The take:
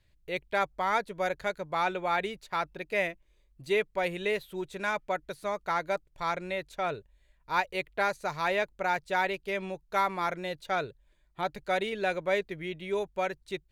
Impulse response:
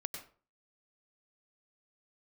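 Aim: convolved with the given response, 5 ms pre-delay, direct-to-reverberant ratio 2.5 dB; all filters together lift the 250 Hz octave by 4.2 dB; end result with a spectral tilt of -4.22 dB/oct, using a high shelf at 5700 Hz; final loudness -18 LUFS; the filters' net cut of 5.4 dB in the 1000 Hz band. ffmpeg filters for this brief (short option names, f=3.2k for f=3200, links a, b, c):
-filter_complex "[0:a]equalizer=f=250:t=o:g=8,equalizer=f=1k:t=o:g=-8,highshelf=f=5.7k:g=-5.5,asplit=2[a][b];[1:a]atrim=start_sample=2205,adelay=5[c];[b][c]afir=irnorm=-1:irlink=0,volume=-2dB[d];[a][d]amix=inputs=2:normalize=0,volume=12dB"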